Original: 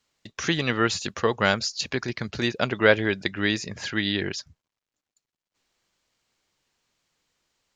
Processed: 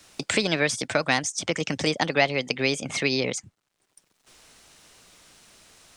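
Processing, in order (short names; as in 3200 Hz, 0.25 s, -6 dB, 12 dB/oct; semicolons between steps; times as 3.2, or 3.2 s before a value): varispeed +30%; three-band squash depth 70%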